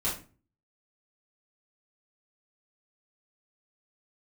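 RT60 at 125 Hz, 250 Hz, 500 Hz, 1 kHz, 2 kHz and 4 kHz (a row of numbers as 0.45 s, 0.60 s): 0.60 s, 0.50 s, 0.40 s, 0.35 s, 0.30 s, 0.25 s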